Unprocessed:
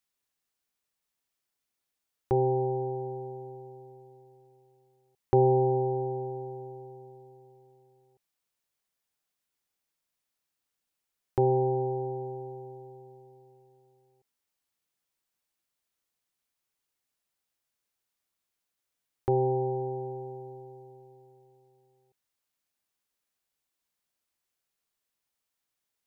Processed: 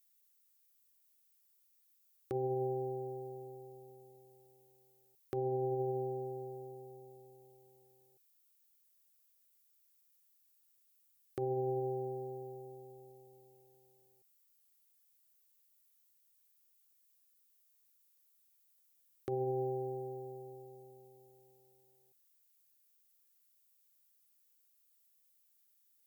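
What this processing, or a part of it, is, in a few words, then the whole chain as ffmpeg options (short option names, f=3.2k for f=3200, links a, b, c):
PA system with an anti-feedback notch: -af "highpass=120,asuperstop=centerf=930:order=8:qfactor=3.1,alimiter=limit=-23dB:level=0:latency=1:release=22,aemphasis=mode=production:type=75fm,volume=-5dB"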